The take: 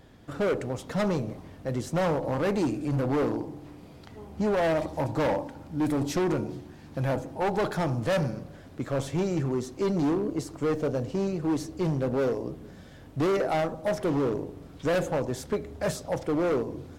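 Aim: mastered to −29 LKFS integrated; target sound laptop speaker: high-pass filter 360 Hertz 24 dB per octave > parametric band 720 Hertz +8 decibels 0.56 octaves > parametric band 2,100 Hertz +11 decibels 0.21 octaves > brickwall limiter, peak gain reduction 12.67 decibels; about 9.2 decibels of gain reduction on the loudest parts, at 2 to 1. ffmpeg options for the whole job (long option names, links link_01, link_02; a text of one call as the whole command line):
ffmpeg -i in.wav -af "acompressor=threshold=-41dB:ratio=2,highpass=frequency=360:width=0.5412,highpass=frequency=360:width=1.3066,equalizer=frequency=720:width_type=o:width=0.56:gain=8,equalizer=frequency=2100:width_type=o:width=0.21:gain=11,volume=13.5dB,alimiter=limit=-19.5dB:level=0:latency=1" out.wav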